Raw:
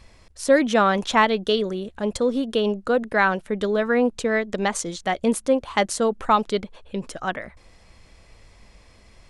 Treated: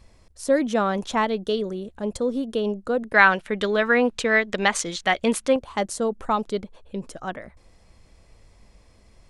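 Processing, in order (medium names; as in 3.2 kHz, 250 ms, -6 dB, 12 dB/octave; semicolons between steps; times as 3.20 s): peaking EQ 2.4 kHz -6 dB 2.6 oct, from 3.14 s +9 dB, from 5.56 s -6 dB; trim -2 dB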